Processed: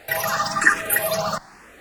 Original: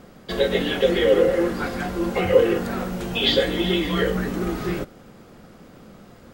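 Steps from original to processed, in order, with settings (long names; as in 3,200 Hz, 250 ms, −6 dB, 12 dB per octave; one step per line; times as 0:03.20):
Savitzky-Golay smoothing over 15 samples
change of speed 3.51×
frequency shifter mixed with the dry sound +1.1 Hz
level +3 dB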